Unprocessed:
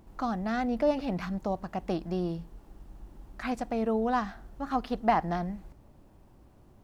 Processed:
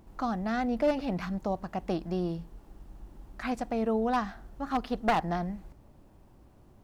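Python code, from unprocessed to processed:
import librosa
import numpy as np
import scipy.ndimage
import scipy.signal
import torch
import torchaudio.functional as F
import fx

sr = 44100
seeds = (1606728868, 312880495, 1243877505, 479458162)

y = np.minimum(x, 2.0 * 10.0 ** (-20.5 / 20.0) - x)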